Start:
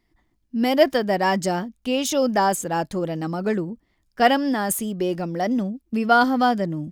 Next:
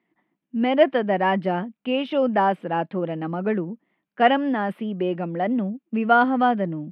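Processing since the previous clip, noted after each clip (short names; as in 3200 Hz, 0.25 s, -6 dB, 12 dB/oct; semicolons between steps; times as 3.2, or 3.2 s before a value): elliptic band-pass 170–2800 Hz, stop band 40 dB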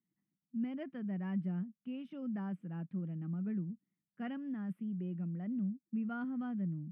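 EQ curve 180 Hz 0 dB, 480 Hz -24 dB, 870 Hz -27 dB, 1300 Hz -19 dB, 2400 Hz -21 dB, 4100 Hz -26 dB, 6800 Hz -10 dB; gain -6.5 dB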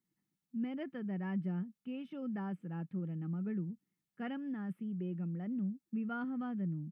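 comb 2.3 ms, depth 32%; gain +2.5 dB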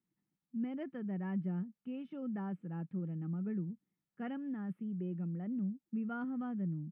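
high shelf 2700 Hz -10.5 dB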